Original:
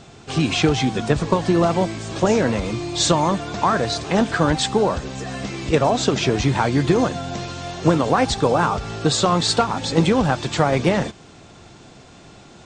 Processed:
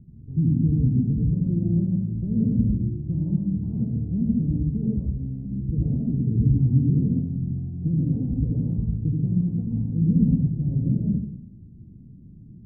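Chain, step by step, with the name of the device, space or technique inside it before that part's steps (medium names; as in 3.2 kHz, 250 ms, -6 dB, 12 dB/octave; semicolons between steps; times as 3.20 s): club heard from the street (peak limiter -9.5 dBFS, peak gain reduction 7.5 dB; low-pass 210 Hz 24 dB/octave; reverberation RT60 0.80 s, pre-delay 74 ms, DRR -2.5 dB)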